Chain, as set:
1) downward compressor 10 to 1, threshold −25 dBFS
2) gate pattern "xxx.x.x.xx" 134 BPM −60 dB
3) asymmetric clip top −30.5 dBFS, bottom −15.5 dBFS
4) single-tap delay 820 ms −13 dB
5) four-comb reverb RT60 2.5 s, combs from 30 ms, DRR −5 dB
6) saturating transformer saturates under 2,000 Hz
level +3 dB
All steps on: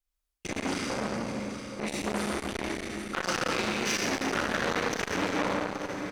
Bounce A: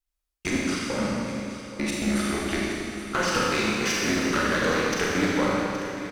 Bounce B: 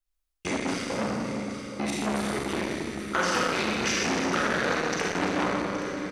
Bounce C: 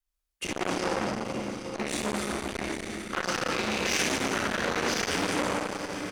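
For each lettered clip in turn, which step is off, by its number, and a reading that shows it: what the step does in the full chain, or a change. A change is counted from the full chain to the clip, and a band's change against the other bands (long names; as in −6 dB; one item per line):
6, change in crest factor −3.5 dB
3, distortion level −9 dB
2, 8 kHz band +2.0 dB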